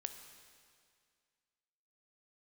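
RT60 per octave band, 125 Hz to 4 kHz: 2.1, 2.1, 2.1, 2.1, 2.1, 2.0 seconds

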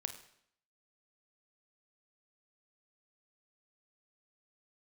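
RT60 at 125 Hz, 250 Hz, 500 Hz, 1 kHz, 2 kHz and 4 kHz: 0.70, 0.75, 0.70, 0.65, 0.65, 0.65 seconds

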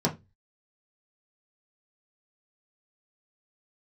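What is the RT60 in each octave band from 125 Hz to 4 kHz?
0.40, 0.30, 0.25, 0.20, 0.20, 0.20 seconds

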